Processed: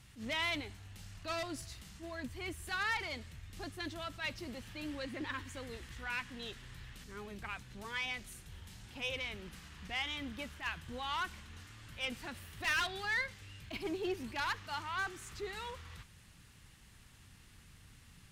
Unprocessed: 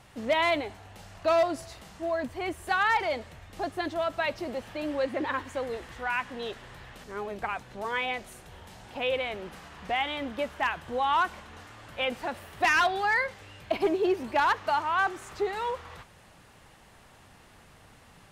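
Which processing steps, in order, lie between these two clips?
amplifier tone stack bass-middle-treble 6-0-2; valve stage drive 40 dB, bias 0.45; attacks held to a fixed rise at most 200 dB/s; trim +14.5 dB

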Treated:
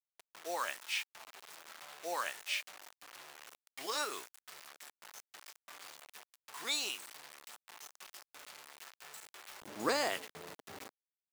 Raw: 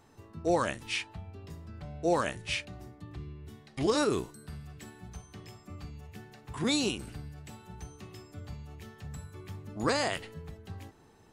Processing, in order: bit crusher 7-bit; high-pass 950 Hz 12 dB/octave, from 9.62 s 300 Hz; trim -3 dB

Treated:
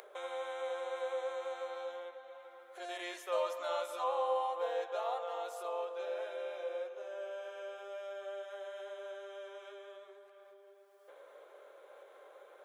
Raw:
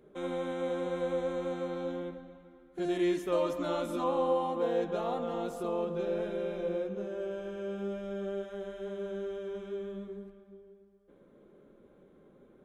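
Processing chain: upward compressor, threshold -34 dBFS; steep high-pass 540 Hz 36 dB/octave; trim -1 dB

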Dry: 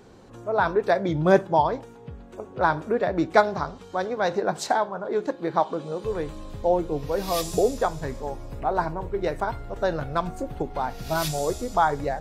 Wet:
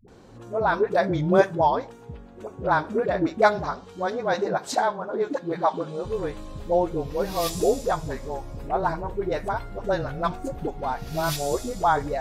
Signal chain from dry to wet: phase dispersion highs, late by 82 ms, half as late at 360 Hz

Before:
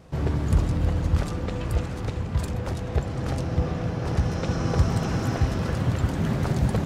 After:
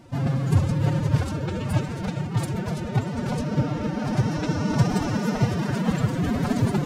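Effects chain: formant-preserving pitch shift +10.5 st; trim +1.5 dB

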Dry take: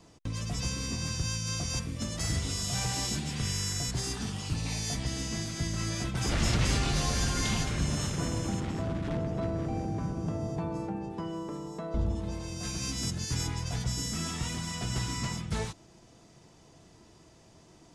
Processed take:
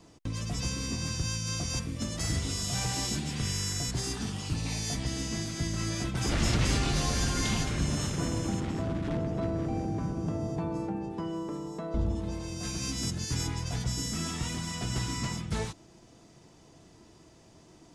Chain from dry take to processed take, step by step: peaking EQ 300 Hz +3 dB 0.73 oct

